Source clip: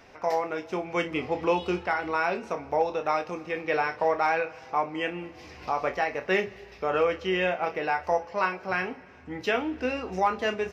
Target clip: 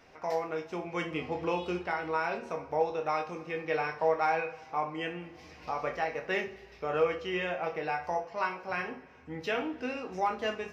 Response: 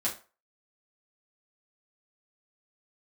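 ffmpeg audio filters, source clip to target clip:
-filter_complex "[0:a]asplit=2[a][b];[1:a]atrim=start_sample=2205,asetrate=31752,aresample=44100[c];[b][c]afir=irnorm=-1:irlink=0,volume=-9.5dB[d];[a][d]amix=inputs=2:normalize=0,volume=-8.5dB"

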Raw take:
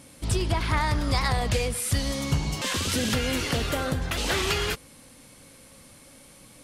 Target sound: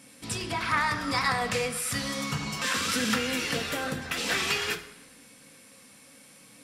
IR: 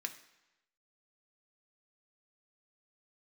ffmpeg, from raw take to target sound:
-filter_complex "[0:a]asettb=1/sr,asplit=3[a][b][c];[a]atrim=end=0.604[d];[b]atrim=start=0.6:end=3.18,asetpts=PTS-STARTPTS,afade=t=in:d=0.004:c=qsin,afade=t=out:st=2.576:d=0.004:c=qsin,equalizer=f=1.3k:w=2.2:g=8[e];[c]atrim=start=3.176[f];[d][e]acrossfade=d=0.004:c1=hsin:c2=qsin[g];[g][f]acrossfade=d=0.004:c1=qsin:c2=hsin[h];[1:a]atrim=start_sample=2205[i];[h][i]afir=irnorm=-1:irlink=0"

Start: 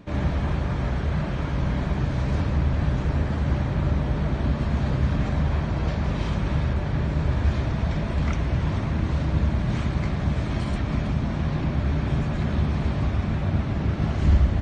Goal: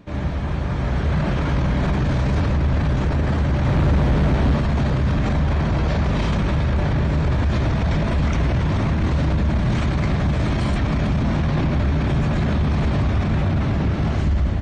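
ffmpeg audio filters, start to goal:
-filter_complex "[0:a]asettb=1/sr,asplit=3[a][b][c];[a]atrim=end=3.644[d];[b]atrim=start=3.64:end=4.6,asetpts=PTS-STARTPTS,afade=t=in:d=0.004:c=qsin,afade=t=out:st=0.956:d=0.004:c=qsin,asoftclip=type=hard:threshold=-22dB[e];[c]atrim=start=4.596[f];[d][e]acrossfade=d=0.004:c1=hsin:c2=qsin[g];[g][f]acrossfade=d=0.004:c1=qsin:c2=hsin,dynaudnorm=f=440:g=5:m=11.5dB,alimiter=limit=-13dB:level=0:latency=1:release=11"

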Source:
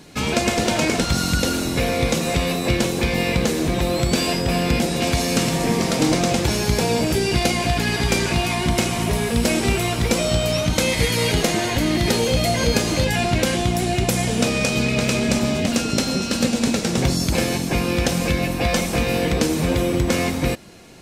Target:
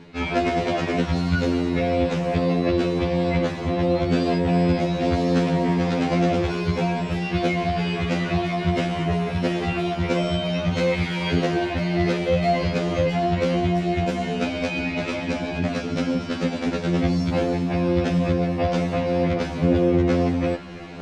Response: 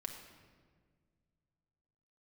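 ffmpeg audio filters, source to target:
-af "lowpass=2.7k,areverse,acompressor=mode=upward:threshold=-23dB:ratio=2.5,areverse,afftfilt=real='re*2*eq(mod(b,4),0)':imag='im*2*eq(mod(b,4),0)':win_size=2048:overlap=0.75"

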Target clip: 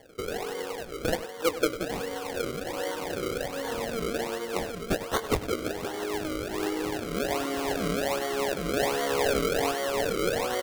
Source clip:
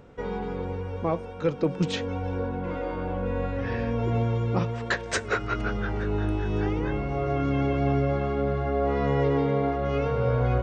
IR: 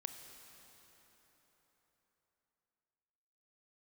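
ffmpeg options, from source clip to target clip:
-filter_complex "[0:a]highpass=f=310:w=0.5412,highpass=f=310:w=1.3066,acrusher=samples=34:mix=1:aa=0.000001:lfo=1:lforange=34:lforate=1.3,asplit=2[a][b];[b]adelay=99.13,volume=-14dB,highshelf=f=4k:g=-2.23[c];[a][c]amix=inputs=2:normalize=0"

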